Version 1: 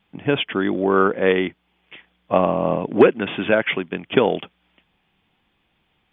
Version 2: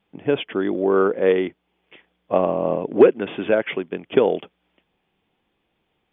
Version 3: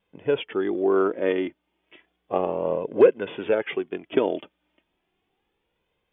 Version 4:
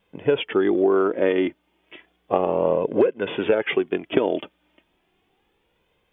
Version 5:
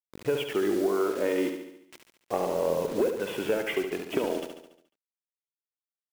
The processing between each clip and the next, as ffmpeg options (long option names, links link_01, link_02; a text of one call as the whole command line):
ffmpeg -i in.wav -af "equalizer=frequency=440:width_type=o:width=1.5:gain=8.5,volume=-7dB" out.wav
ffmpeg -i in.wav -af "flanger=delay=1.9:depth=1.4:regen=34:speed=0.33:shape=sinusoidal" out.wav
ffmpeg -i in.wav -af "acompressor=threshold=-22dB:ratio=16,volume=7.5dB" out.wav
ffmpeg -i in.wav -af "asoftclip=type=tanh:threshold=-7.5dB,acrusher=bits=5:mix=0:aa=0.000001,aecho=1:1:71|142|213|284|355|426|497:0.447|0.246|0.135|0.0743|0.0409|0.0225|0.0124,volume=-7dB" out.wav